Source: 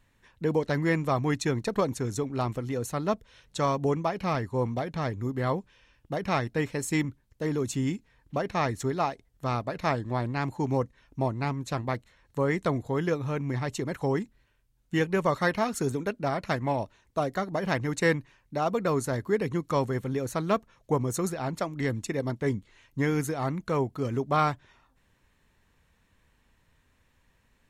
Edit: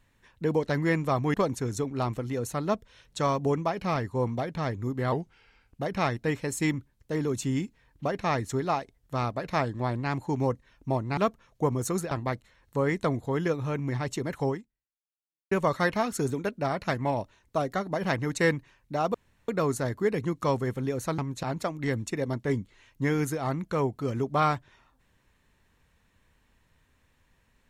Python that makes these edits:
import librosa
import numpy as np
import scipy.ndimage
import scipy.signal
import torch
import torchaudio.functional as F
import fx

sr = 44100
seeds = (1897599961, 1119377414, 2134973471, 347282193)

y = fx.edit(x, sr, fx.cut(start_s=1.34, length_s=0.39),
    fx.speed_span(start_s=5.51, length_s=0.61, speed=0.88),
    fx.swap(start_s=11.48, length_s=0.25, other_s=20.46, other_length_s=0.94),
    fx.fade_out_span(start_s=14.1, length_s=1.03, curve='exp'),
    fx.insert_room_tone(at_s=18.76, length_s=0.34), tone=tone)